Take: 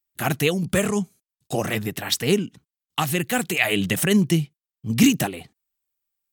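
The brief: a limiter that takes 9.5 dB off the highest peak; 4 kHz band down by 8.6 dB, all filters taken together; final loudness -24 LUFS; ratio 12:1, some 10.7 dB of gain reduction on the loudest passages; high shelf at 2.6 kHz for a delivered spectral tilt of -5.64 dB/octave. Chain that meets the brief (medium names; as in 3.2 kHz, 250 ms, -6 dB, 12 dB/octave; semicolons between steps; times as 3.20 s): treble shelf 2.6 kHz -6.5 dB; peaking EQ 4 kHz -7 dB; compression 12:1, threshold -22 dBFS; trim +8 dB; peak limiter -13.5 dBFS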